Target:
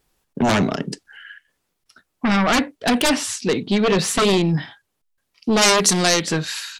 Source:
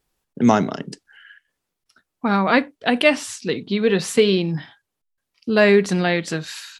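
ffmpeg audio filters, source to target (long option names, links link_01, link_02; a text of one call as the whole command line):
ffmpeg -i in.wav -filter_complex "[0:a]aeval=exprs='0.891*sin(PI/2*5.01*val(0)/0.891)':channel_layout=same,asplit=3[link_01][link_02][link_03];[link_01]afade=type=out:start_time=5.61:duration=0.02[link_04];[link_02]bass=frequency=250:gain=-5,treble=frequency=4000:gain=14,afade=type=in:start_time=5.61:duration=0.02,afade=type=out:start_time=6.21:duration=0.02[link_05];[link_03]afade=type=in:start_time=6.21:duration=0.02[link_06];[link_04][link_05][link_06]amix=inputs=3:normalize=0,volume=-12dB" out.wav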